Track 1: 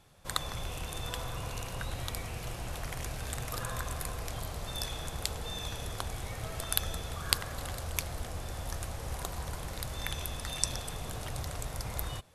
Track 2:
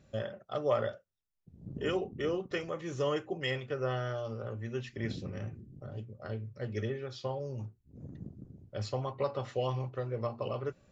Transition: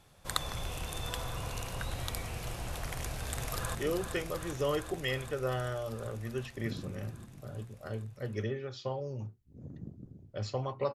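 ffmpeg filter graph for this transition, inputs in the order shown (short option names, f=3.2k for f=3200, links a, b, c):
-filter_complex "[0:a]apad=whole_dur=10.94,atrim=end=10.94,atrim=end=3.752[a];[1:a]atrim=start=2.138:end=9.33[b];[a][b]acrossfade=d=0.004:c1=hsin:c2=hsin,asplit=2[c][d];[d]afade=t=in:st=2.97:d=0.01,afade=t=out:st=3.75:d=0.01,aecho=0:1:390|780|1170|1560|1950|2340|2730|3120|3510|3900|4290|4680:0.501187|0.40095|0.32076|0.256608|0.205286|0.164229|0.131383|0.105107|0.0840853|0.0672682|0.0538146|0.0430517[e];[c][e]amix=inputs=2:normalize=0"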